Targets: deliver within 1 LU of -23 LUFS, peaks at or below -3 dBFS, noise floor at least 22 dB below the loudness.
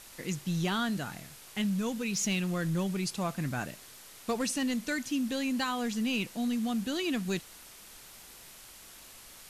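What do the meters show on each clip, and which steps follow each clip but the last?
clipped 0.2%; flat tops at -23.5 dBFS; noise floor -52 dBFS; noise floor target -54 dBFS; loudness -32.0 LUFS; peak -23.5 dBFS; loudness target -23.0 LUFS
-> clip repair -23.5 dBFS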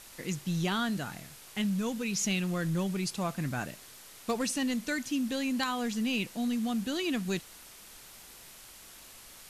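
clipped 0.0%; noise floor -52 dBFS; noise floor target -54 dBFS
-> noise print and reduce 6 dB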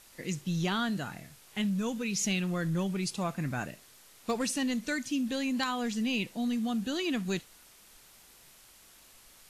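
noise floor -57 dBFS; loudness -32.0 LUFS; peak -15.5 dBFS; loudness target -23.0 LUFS
-> gain +9 dB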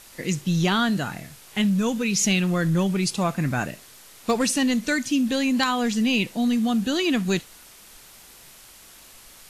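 loudness -23.0 LUFS; peak -6.5 dBFS; noise floor -48 dBFS

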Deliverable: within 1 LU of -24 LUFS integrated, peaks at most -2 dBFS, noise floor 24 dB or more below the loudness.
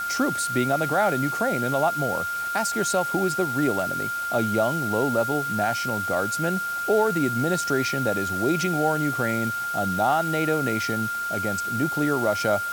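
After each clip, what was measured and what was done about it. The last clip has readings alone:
steady tone 1400 Hz; tone level -26 dBFS; noise floor -29 dBFS; noise floor target -48 dBFS; loudness -24.0 LUFS; peak -10.5 dBFS; loudness target -24.0 LUFS
-> notch 1400 Hz, Q 30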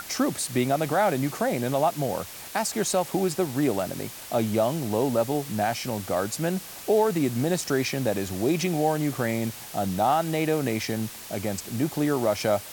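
steady tone none; noise floor -41 dBFS; noise floor target -50 dBFS
-> noise print and reduce 9 dB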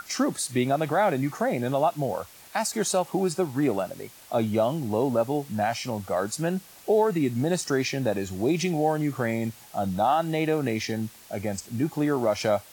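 noise floor -50 dBFS; noise floor target -51 dBFS
-> noise print and reduce 6 dB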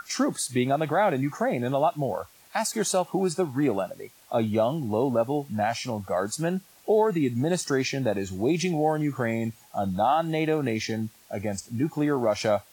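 noise floor -56 dBFS; loudness -26.5 LUFS; peak -12.5 dBFS; loudness target -24.0 LUFS
-> gain +2.5 dB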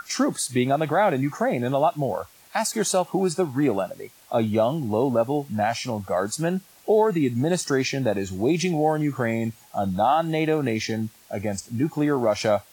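loudness -24.0 LUFS; peak -10.0 dBFS; noise floor -53 dBFS

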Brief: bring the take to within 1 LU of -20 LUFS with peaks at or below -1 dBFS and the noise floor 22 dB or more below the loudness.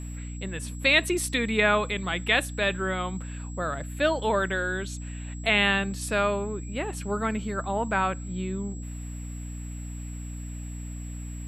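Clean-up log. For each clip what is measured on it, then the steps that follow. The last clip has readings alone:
hum 60 Hz; harmonics up to 300 Hz; hum level -34 dBFS; steady tone 7700 Hz; tone level -47 dBFS; loudness -26.5 LUFS; peak -8.5 dBFS; loudness target -20.0 LUFS
-> de-hum 60 Hz, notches 5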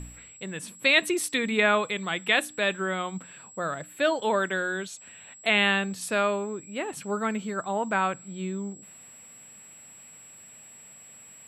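hum none; steady tone 7700 Hz; tone level -47 dBFS
-> notch 7700 Hz, Q 30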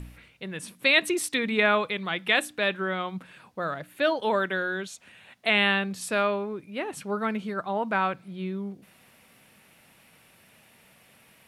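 steady tone none; loudness -26.5 LUFS; peak -9.0 dBFS; loudness target -20.0 LUFS
-> gain +6.5 dB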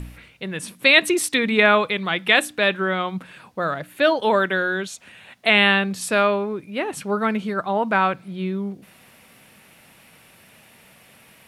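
loudness -20.0 LUFS; peak -2.5 dBFS; noise floor -52 dBFS

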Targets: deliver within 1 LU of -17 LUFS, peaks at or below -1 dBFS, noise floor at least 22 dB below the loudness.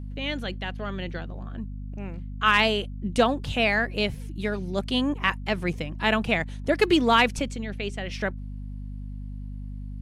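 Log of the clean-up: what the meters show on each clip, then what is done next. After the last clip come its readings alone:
hum 50 Hz; harmonics up to 250 Hz; hum level -33 dBFS; loudness -25.5 LUFS; peak -7.5 dBFS; loudness target -17.0 LUFS
-> notches 50/100/150/200/250 Hz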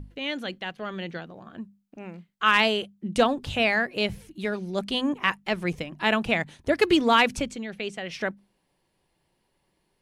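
hum none; loudness -25.5 LUFS; peak -8.0 dBFS; loudness target -17.0 LUFS
-> gain +8.5 dB; limiter -1 dBFS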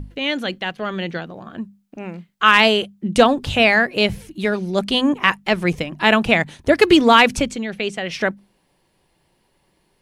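loudness -17.5 LUFS; peak -1.0 dBFS; noise floor -65 dBFS

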